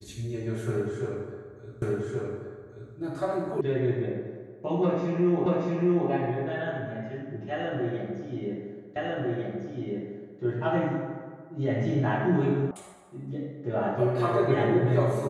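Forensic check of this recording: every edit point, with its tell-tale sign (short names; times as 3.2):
1.82 repeat of the last 1.13 s
3.61 sound cut off
5.46 repeat of the last 0.63 s
8.96 repeat of the last 1.45 s
12.71 sound cut off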